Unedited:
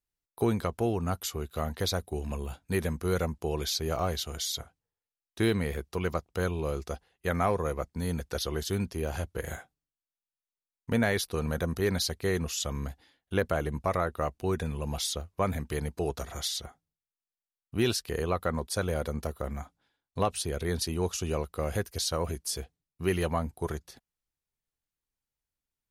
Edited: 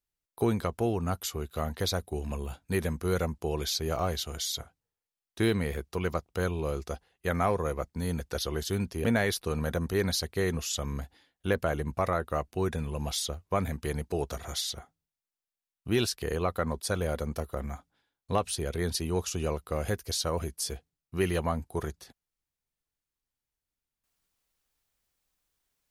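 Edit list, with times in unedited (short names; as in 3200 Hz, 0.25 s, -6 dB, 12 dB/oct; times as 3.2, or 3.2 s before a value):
9.04–10.91 cut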